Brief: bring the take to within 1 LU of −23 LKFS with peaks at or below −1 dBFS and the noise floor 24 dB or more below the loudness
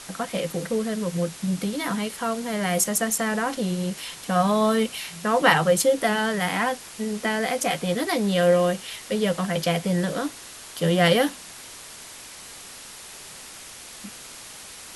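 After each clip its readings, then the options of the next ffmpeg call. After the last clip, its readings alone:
background noise floor −42 dBFS; target noise floor −48 dBFS; integrated loudness −24.0 LKFS; sample peak −2.5 dBFS; target loudness −23.0 LKFS
→ -af "afftdn=noise_reduction=6:noise_floor=-42"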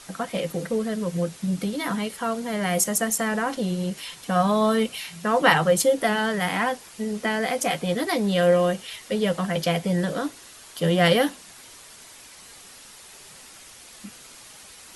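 background noise floor −47 dBFS; target noise floor −48 dBFS
→ -af "afftdn=noise_reduction=6:noise_floor=-47"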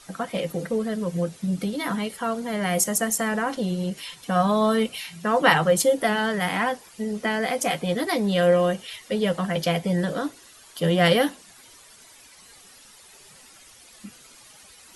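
background noise floor −50 dBFS; integrated loudness −24.0 LKFS; sample peak −2.5 dBFS; target loudness −23.0 LKFS
→ -af "volume=1dB"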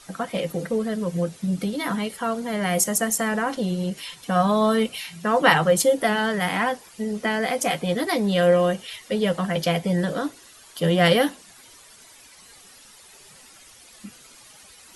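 integrated loudness −23.0 LKFS; sample peak −1.5 dBFS; background noise floor −49 dBFS

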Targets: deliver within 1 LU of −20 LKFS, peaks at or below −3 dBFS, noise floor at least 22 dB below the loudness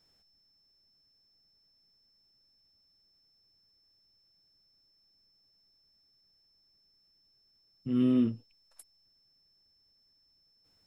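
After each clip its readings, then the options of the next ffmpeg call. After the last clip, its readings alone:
interfering tone 5,300 Hz; level of the tone −67 dBFS; integrated loudness −29.5 LKFS; sample peak −18.0 dBFS; target loudness −20.0 LKFS
→ -af "bandreject=frequency=5300:width=30"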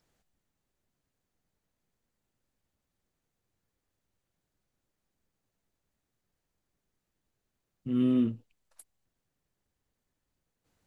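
interfering tone none found; integrated loudness −28.5 LKFS; sample peak −18.0 dBFS; target loudness −20.0 LKFS
→ -af "volume=8.5dB"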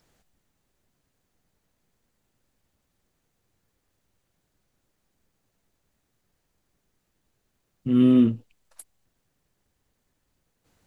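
integrated loudness −20.0 LKFS; sample peak −9.5 dBFS; background noise floor −76 dBFS

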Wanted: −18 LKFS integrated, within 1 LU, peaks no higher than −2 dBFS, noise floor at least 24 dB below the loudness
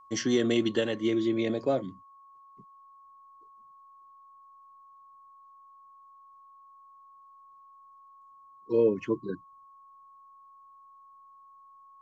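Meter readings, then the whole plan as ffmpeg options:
interfering tone 1,100 Hz; level of the tone −52 dBFS; integrated loudness −28.5 LKFS; sample peak −13.0 dBFS; target loudness −18.0 LKFS
→ -af "bandreject=frequency=1100:width=30"
-af "volume=10.5dB"

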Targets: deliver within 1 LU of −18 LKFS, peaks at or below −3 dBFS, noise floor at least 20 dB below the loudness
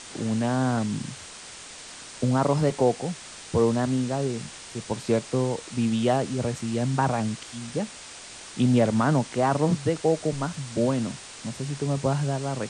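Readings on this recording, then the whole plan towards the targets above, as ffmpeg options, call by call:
background noise floor −43 dBFS; target noise floor −46 dBFS; integrated loudness −26.0 LKFS; sample peak −9.5 dBFS; target loudness −18.0 LKFS
→ -af "afftdn=noise_reduction=6:noise_floor=-43"
-af "volume=8dB,alimiter=limit=-3dB:level=0:latency=1"

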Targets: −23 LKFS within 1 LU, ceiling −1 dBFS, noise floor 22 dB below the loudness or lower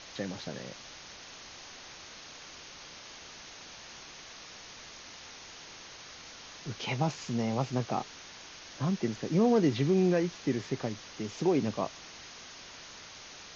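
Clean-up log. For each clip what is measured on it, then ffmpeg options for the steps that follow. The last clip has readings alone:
background noise floor −49 dBFS; target noise floor −53 dBFS; integrated loudness −31.0 LKFS; sample peak −15.0 dBFS; target loudness −23.0 LKFS
→ -af "afftdn=noise_reduction=6:noise_floor=-49"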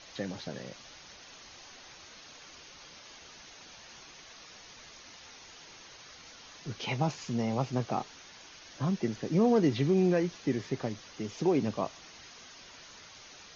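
background noise floor −52 dBFS; target noise floor −53 dBFS
→ -af "afftdn=noise_reduction=6:noise_floor=-52"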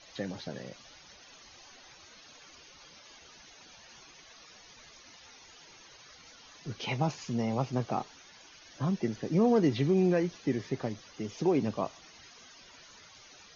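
background noise floor −55 dBFS; integrated loudness −31.0 LKFS; sample peak −15.0 dBFS; target loudness −23.0 LKFS
→ -af "volume=8dB"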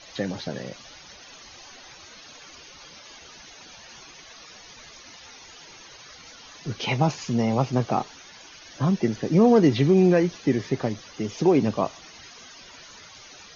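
integrated loudness −23.0 LKFS; sample peak −7.0 dBFS; background noise floor −47 dBFS

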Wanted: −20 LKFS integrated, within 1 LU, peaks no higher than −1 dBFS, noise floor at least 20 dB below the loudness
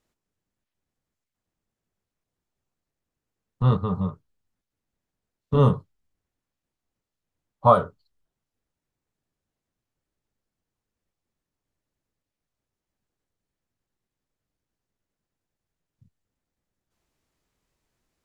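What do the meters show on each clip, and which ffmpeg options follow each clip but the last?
integrated loudness −22.5 LKFS; sample peak −4.5 dBFS; target loudness −20.0 LKFS
→ -af "volume=2.5dB"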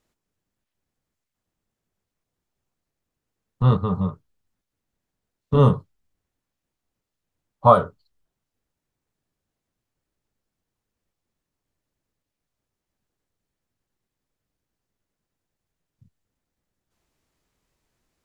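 integrated loudness −20.0 LKFS; sample peak −2.0 dBFS; background noise floor −84 dBFS

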